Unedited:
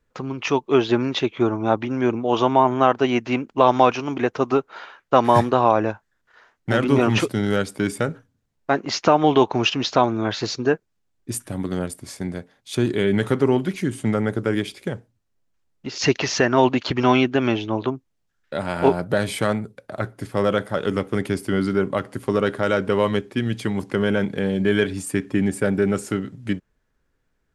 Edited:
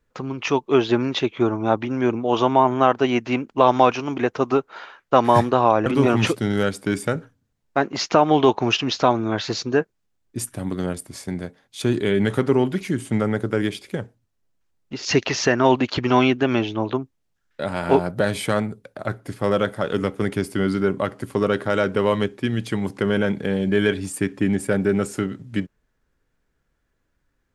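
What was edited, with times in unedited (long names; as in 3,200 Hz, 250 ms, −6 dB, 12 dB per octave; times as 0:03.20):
0:05.86–0:06.79: remove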